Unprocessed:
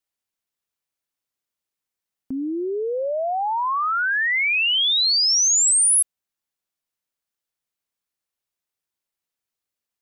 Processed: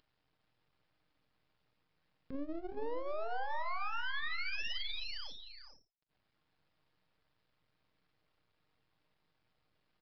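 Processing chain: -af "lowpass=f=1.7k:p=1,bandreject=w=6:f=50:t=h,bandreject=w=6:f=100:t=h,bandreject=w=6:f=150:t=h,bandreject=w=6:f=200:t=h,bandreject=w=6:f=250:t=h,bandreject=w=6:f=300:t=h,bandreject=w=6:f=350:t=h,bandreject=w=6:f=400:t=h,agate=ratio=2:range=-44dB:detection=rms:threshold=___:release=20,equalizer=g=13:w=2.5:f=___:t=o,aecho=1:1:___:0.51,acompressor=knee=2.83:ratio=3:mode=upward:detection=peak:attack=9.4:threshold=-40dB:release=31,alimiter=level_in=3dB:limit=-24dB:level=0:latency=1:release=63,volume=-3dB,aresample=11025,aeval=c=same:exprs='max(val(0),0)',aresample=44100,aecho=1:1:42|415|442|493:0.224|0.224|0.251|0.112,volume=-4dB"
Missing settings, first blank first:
-22dB, 78, 6.5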